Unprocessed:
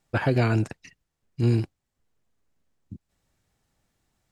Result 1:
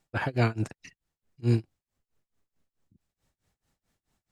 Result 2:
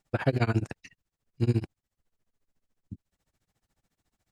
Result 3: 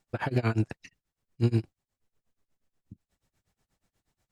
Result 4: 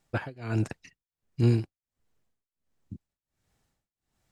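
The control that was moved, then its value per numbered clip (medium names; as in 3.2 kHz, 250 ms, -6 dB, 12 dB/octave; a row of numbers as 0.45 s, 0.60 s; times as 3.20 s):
tremolo, rate: 4.6 Hz, 14 Hz, 8.3 Hz, 1.4 Hz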